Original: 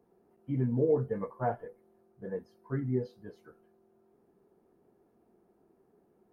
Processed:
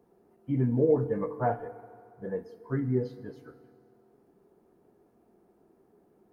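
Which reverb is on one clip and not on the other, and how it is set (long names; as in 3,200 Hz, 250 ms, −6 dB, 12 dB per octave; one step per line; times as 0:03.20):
feedback delay network reverb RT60 2.3 s, low-frequency decay 0.8×, high-frequency decay 0.9×, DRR 13 dB
level +3.5 dB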